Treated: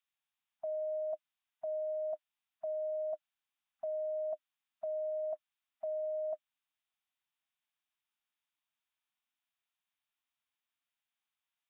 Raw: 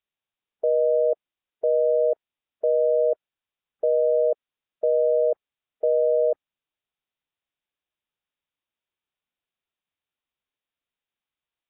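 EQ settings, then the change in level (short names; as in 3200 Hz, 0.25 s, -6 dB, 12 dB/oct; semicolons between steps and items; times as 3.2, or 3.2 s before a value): Chebyshev band-stop 300–620 Hz, order 4; low shelf 380 Hz -12 dB; notch 610 Hz, Q 12; 0.0 dB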